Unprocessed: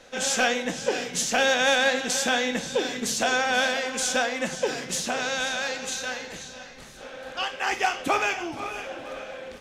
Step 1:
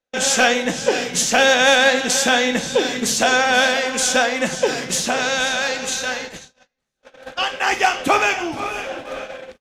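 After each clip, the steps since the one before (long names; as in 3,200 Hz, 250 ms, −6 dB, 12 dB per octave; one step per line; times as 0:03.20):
noise gate −37 dBFS, range −42 dB
level +7.5 dB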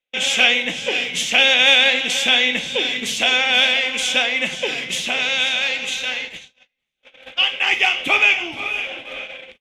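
flat-topped bell 2,700 Hz +15 dB 1 octave
level −7.5 dB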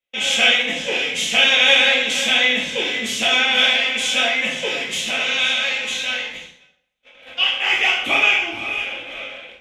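dense smooth reverb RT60 0.67 s, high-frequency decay 0.75×, DRR −4.5 dB
level −5 dB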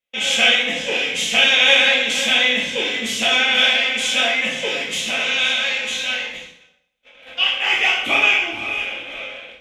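reverb whose tail is shaped and stops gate 290 ms falling, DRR 11 dB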